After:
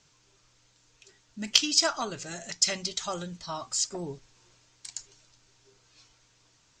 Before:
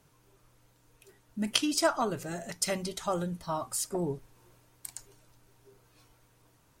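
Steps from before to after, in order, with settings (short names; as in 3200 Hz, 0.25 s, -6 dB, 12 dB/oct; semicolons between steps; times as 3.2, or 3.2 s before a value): EQ curve 490 Hz 0 dB, 1000 Hz +2 dB, 5100 Hz +15 dB, 7400 Hz +13 dB, 11000 Hz -27 dB; in parallel at -8 dB: soft clip -5.5 dBFS, distortion -14 dB; on the sum: gain -7.5 dB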